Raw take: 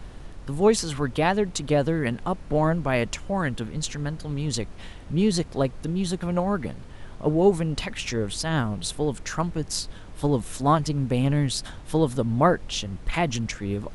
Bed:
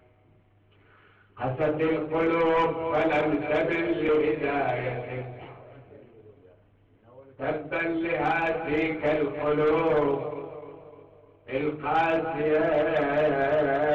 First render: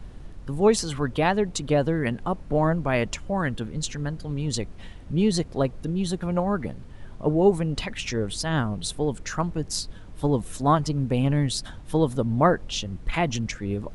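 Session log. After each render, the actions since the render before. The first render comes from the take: denoiser 6 dB, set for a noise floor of -42 dBFS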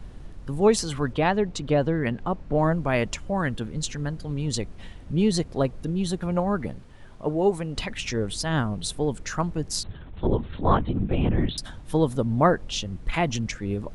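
1.13–2.59 air absorption 74 m; 6.79–7.75 low shelf 340 Hz -7 dB; 9.83–11.58 LPC vocoder at 8 kHz whisper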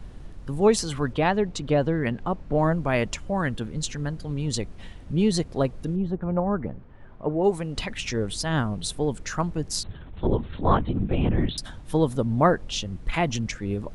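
5.95–7.43 LPF 1000 Hz -> 2200 Hz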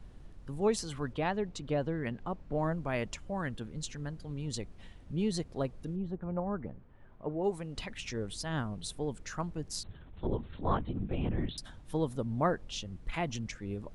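gain -10 dB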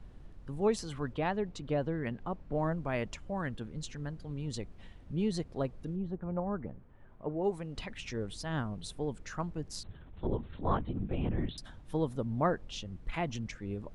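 high shelf 4800 Hz -7 dB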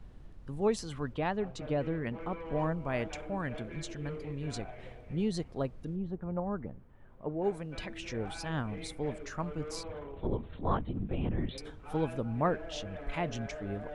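add bed -20.5 dB

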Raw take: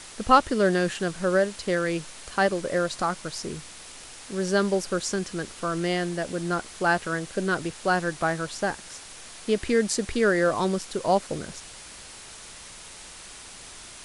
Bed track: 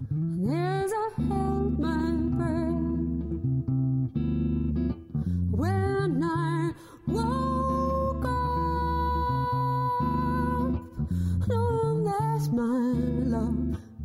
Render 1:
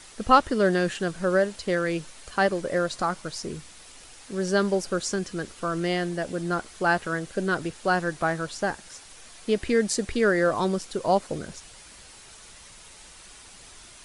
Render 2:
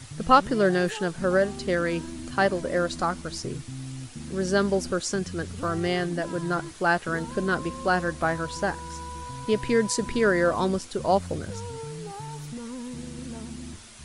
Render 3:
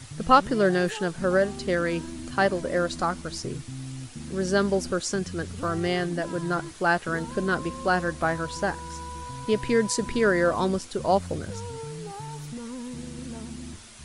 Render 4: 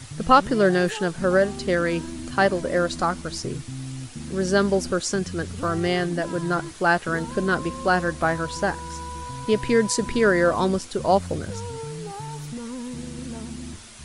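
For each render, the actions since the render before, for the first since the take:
denoiser 6 dB, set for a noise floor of -44 dBFS
add bed track -11 dB
nothing audible
gain +3 dB; limiter -3 dBFS, peak gain reduction 1.5 dB

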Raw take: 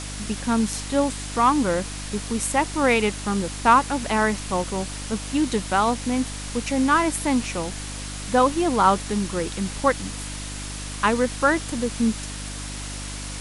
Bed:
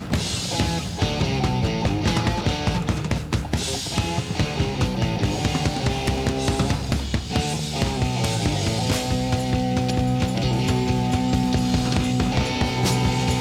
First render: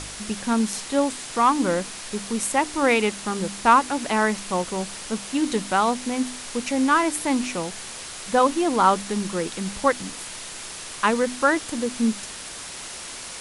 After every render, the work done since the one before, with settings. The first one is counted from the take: de-hum 50 Hz, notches 6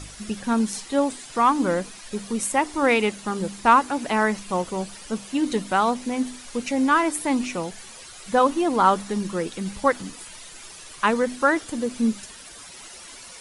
denoiser 11 dB, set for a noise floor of -37 dBFS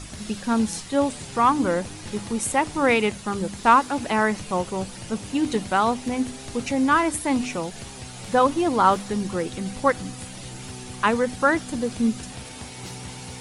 add bed -17.5 dB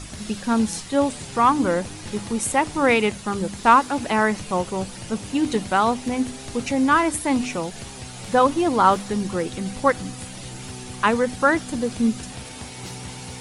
gain +1.5 dB

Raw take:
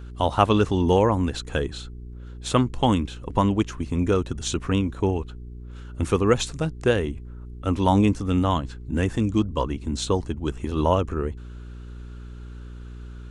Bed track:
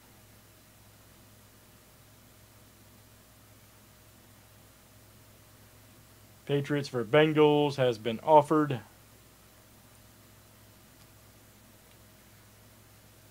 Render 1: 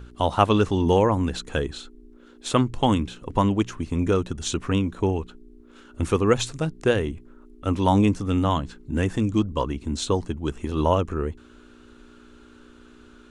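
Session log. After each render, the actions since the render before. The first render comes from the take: de-hum 60 Hz, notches 3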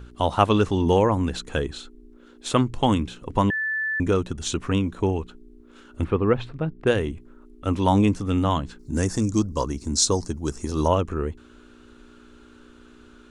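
3.5–4 bleep 1750 Hz -23 dBFS; 6.04–6.87 air absorption 450 m; 8.79–10.88 resonant high shelf 4000 Hz +9 dB, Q 3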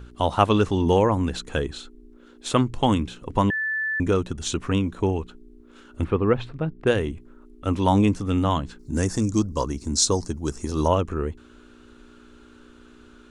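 nothing audible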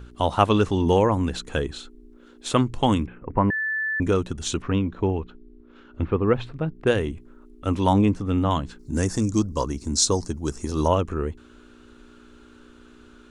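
3.06–4.02 steep low-pass 2300 Hz 48 dB/oct; 4.62–6.28 air absorption 210 m; 7.93–8.51 high shelf 3700 Hz -10.5 dB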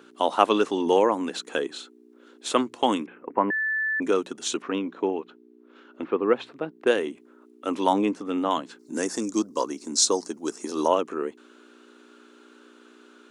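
HPF 270 Hz 24 dB/oct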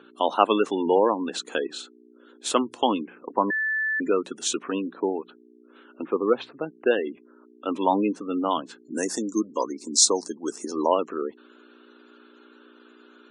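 spectral gate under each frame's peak -25 dB strong; high shelf 5900 Hz +6 dB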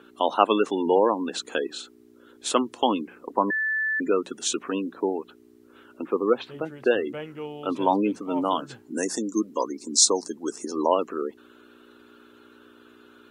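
add bed track -14 dB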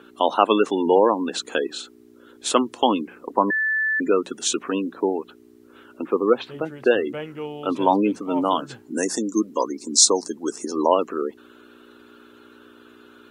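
gain +3.5 dB; limiter -1 dBFS, peak gain reduction 2.5 dB

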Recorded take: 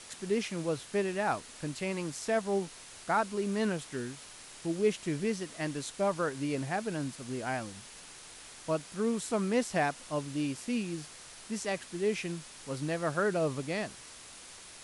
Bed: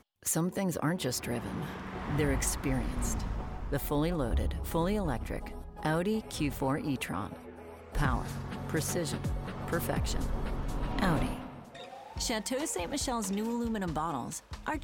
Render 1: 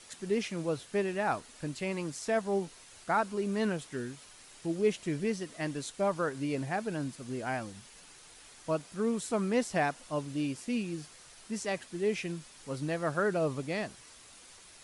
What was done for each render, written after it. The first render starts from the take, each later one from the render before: denoiser 6 dB, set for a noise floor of -50 dBFS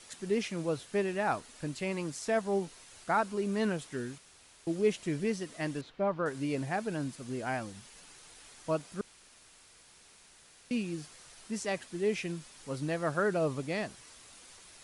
4.18–4.67 room tone; 5.81–6.26 air absorption 330 m; 9.01–10.71 room tone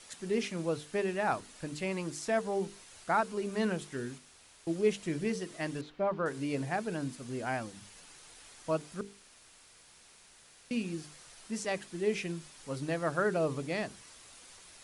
notches 50/100/150/200/250/300/350/400/450 Hz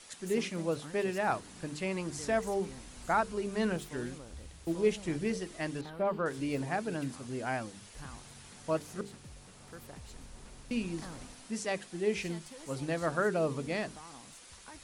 add bed -17.5 dB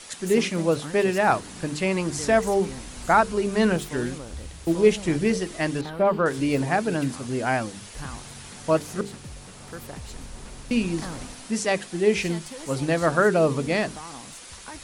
gain +10.5 dB

